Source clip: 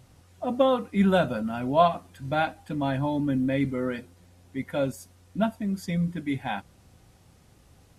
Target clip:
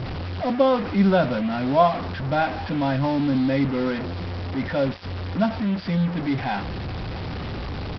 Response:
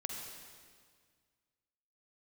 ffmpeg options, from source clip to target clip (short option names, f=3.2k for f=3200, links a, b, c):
-af "aeval=exprs='val(0)+0.5*0.0398*sgn(val(0))':c=same,lowpass=f=2.4k:p=1,aresample=11025,acrusher=bits=5:mix=0:aa=0.5,aresample=44100,volume=2dB"